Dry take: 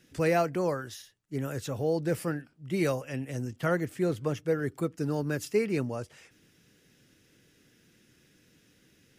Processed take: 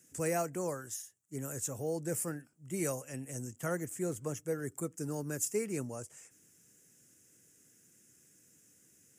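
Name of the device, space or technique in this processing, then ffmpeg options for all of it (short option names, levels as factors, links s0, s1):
budget condenser microphone: -af "highpass=75,highshelf=f=5500:t=q:w=3:g=11.5,volume=0.422"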